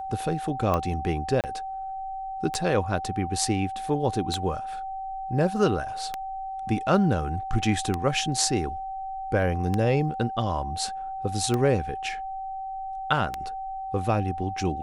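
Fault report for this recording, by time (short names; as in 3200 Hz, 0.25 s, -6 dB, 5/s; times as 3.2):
tick 33 1/3 rpm -13 dBFS
tone 770 Hz -31 dBFS
1.41–1.44 gap 28 ms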